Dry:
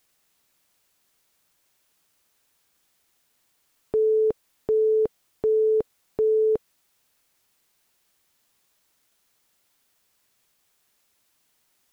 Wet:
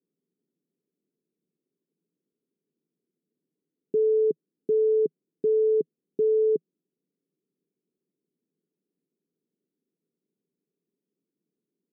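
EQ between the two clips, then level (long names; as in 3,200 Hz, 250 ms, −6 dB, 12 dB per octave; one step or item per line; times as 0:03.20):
Chebyshev band-pass filter 160–420 Hz, order 3
+1.5 dB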